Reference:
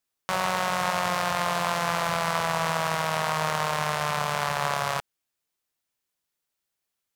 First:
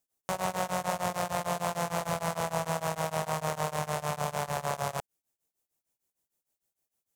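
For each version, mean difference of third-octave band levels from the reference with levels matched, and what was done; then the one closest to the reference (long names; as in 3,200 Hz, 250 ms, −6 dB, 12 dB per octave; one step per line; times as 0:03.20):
4.5 dB: flat-topped bell 2,300 Hz −8 dB 2.6 octaves
in parallel at −0.5 dB: brickwall limiter −24 dBFS, peak gain reduction 11 dB
on the sum: tremolo along a rectified sine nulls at 6.6 Hz
level −2 dB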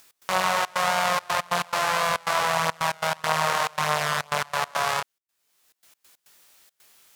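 6.0 dB: low-shelf EQ 330 Hz −8.5 dB
chorus effect 0.49 Hz, delay 19.5 ms, depth 7 ms
gate pattern "x.xxxx.xxxx.x." 139 BPM −24 dB
upward compression, threshold −44 dBFS
level +7 dB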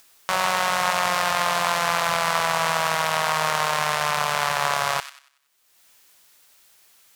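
3.0 dB: low-shelf EQ 75 Hz +5.5 dB
delay with a high-pass on its return 94 ms, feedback 33%, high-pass 1,800 Hz, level −9.5 dB
upward compression, threshold −43 dBFS
low-shelf EQ 390 Hz −11 dB
level +5.5 dB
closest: third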